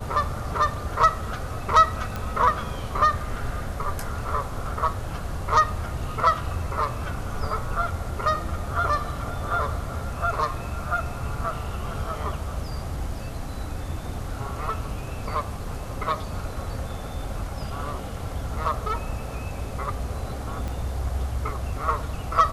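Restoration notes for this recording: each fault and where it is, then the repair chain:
2.16 s: pop -16 dBFS
20.68 s: pop -19 dBFS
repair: de-click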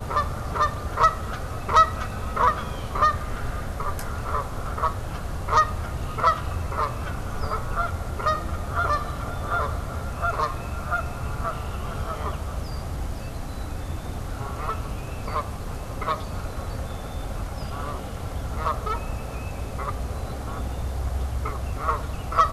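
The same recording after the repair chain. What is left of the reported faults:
2.16 s: pop
20.68 s: pop

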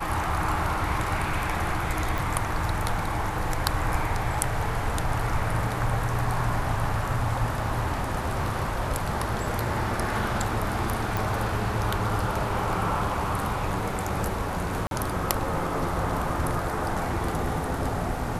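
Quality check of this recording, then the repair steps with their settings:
2.18 s: pop
11.17 s: pop
14.87–14.91 s: dropout 42 ms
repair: de-click; interpolate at 14.87 s, 42 ms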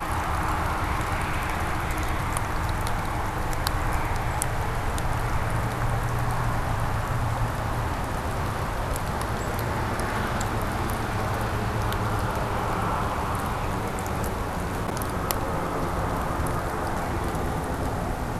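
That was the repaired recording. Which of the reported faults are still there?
nothing left

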